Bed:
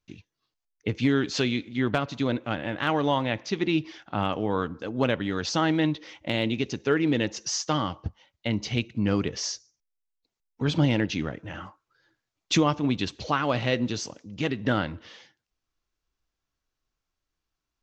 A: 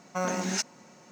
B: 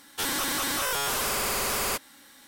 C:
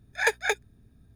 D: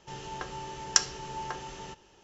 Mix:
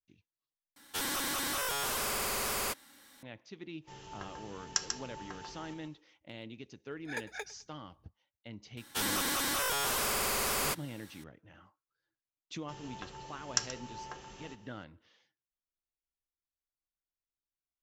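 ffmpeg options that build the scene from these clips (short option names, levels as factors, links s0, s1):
-filter_complex "[2:a]asplit=2[s0][s1];[4:a]asplit=2[s2][s3];[0:a]volume=0.1[s4];[s2]aecho=1:1:141:0.501[s5];[3:a]aecho=1:1:104|208|312:0.112|0.0348|0.0108[s6];[s3]asplit=2[s7][s8];[s8]adelay=128.3,volume=0.2,highshelf=f=4000:g=-2.89[s9];[s7][s9]amix=inputs=2:normalize=0[s10];[s4]asplit=2[s11][s12];[s11]atrim=end=0.764[s13];[s0]atrim=end=2.47,asetpts=PTS-STARTPTS,volume=0.501[s14];[s12]atrim=start=3.226[s15];[s5]atrim=end=2.23,asetpts=PTS-STARTPTS,volume=0.355,afade=t=in:d=0.1,afade=t=out:st=2.13:d=0.1,adelay=3800[s16];[s6]atrim=end=1.15,asetpts=PTS-STARTPTS,volume=0.168,afade=t=in:d=0.004:c=hsin,afade=t=out:st=1.146:d=0.004:c=hsin,adelay=304290S[s17];[s1]atrim=end=2.47,asetpts=PTS-STARTPTS,volume=0.631,afade=t=in:d=0.004:c=hsin,afade=t=out:st=2.466:d=0.004:c=hsin,adelay=8770[s18];[s10]atrim=end=2.23,asetpts=PTS-STARTPTS,volume=0.398,afade=t=in:d=0.004:c=hsin,afade=t=out:st=2.226:d=0.004:c=hsin,adelay=12610[s19];[s13][s14]acrossfade=d=0.004:c1=hsin:c2=hsin[s20];[s20][s15]acrossfade=d=0.004:c1=hsin:c2=hsin[s21];[s21][s16][s17][s18][s19]amix=inputs=5:normalize=0"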